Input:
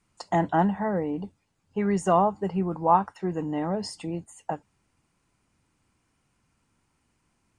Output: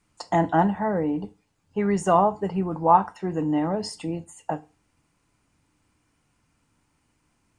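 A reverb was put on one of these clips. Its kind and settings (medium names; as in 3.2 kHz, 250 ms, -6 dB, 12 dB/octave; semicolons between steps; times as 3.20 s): FDN reverb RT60 0.31 s, low-frequency decay 1×, high-frequency decay 0.95×, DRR 10.5 dB; trim +2 dB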